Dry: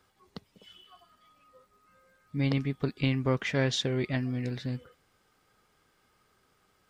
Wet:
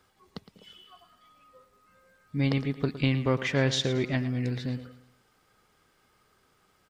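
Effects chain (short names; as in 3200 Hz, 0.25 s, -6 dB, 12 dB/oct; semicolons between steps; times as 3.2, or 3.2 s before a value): feedback echo 0.112 s, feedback 39%, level -13.5 dB; gain +2 dB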